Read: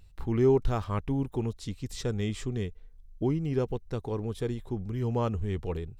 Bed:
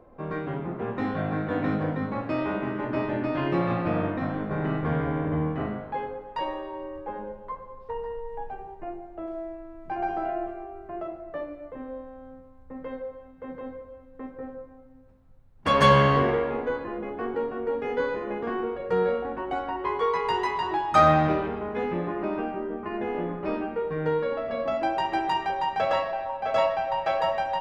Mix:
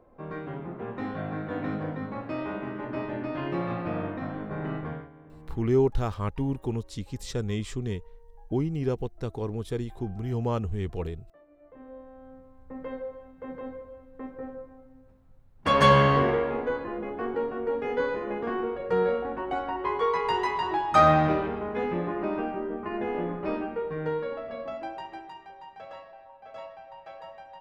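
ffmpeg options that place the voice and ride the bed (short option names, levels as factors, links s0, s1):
-filter_complex "[0:a]adelay=5300,volume=1.06[s0];[1:a]volume=7.94,afade=t=out:st=4.77:d=0.32:silence=0.11885,afade=t=in:st=11.46:d=1.16:silence=0.0707946,afade=t=out:st=23.36:d=1.97:silence=0.11885[s1];[s0][s1]amix=inputs=2:normalize=0"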